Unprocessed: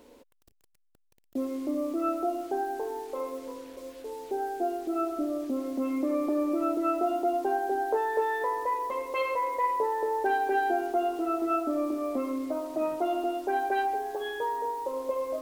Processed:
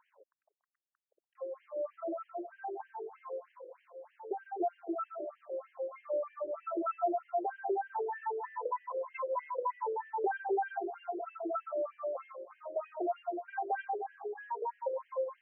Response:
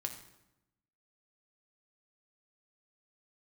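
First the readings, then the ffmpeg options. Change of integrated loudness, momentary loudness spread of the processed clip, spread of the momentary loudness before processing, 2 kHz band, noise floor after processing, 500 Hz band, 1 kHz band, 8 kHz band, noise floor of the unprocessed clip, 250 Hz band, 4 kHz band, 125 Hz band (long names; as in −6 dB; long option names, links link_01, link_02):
−8.0 dB, 10 LU, 8 LU, −9.5 dB, below −85 dBFS, −6.5 dB, −8.0 dB, below −30 dB, −68 dBFS, −14.0 dB, below −20 dB, can't be measured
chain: -af "highshelf=frequency=2100:gain=-11.5,afftfilt=real='re*between(b*sr/1024,440*pow(2300/440,0.5+0.5*sin(2*PI*3.2*pts/sr))/1.41,440*pow(2300/440,0.5+0.5*sin(2*PI*3.2*pts/sr))*1.41)':imag='im*between(b*sr/1024,440*pow(2300/440,0.5+0.5*sin(2*PI*3.2*pts/sr))/1.41,440*pow(2300/440,0.5+0.5*sin(2*PI*3.2*pts/sr))*1.41)':win_size=1024:overlap=0.75"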